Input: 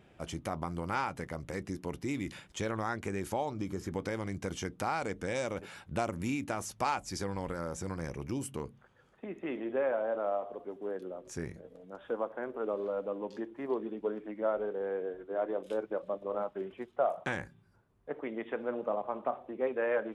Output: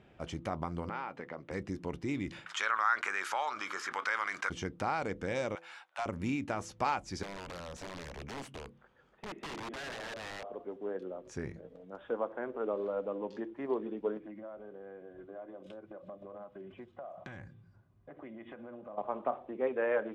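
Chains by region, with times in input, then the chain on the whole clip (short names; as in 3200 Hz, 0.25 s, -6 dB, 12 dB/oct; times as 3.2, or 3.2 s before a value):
0.89–1.51 compressor 4:1, threshold -34 dBFS + BPF 250–3500 Hz
2.46–4.5 resonant high-pass 1300 Hz, resonance Q 3.1 + fast leveller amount 50%
5.55–6.06 steep high-pass 700 Hz 48 dB/oct + hard clip -29.5 dBFS
7.23–10.5 bell 110 Hz -11 dB 0.43 oct + compressor 8:1, threshold -36 dBFS + wrapped overs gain 36.5 dB
14.17–18.98 bell 100 Hz +8.5 dB 1.5 oct + compressor, threshold -42 dBFS + notch comb 450 Hz
whole clip: Bessel low-pass 4600 Hz, order 2; de-hum 167.7 Hz, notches 3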